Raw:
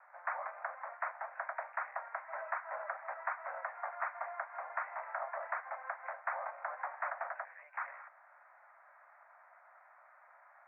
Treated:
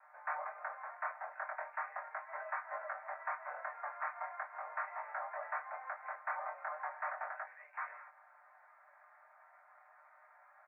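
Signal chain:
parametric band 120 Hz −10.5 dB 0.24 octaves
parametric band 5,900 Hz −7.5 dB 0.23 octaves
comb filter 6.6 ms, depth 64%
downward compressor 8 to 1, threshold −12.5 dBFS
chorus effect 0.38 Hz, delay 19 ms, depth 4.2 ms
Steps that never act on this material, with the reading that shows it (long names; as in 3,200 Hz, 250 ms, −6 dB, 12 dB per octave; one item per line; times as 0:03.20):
parametric band 120 Hz: nothing at its input below 450 Hz
parametric band 5,900 Hz: nothing at its input above 2,600 Hz
downward compressor, threshold −12.5 dBFS: peak of its input −21.0 dBFS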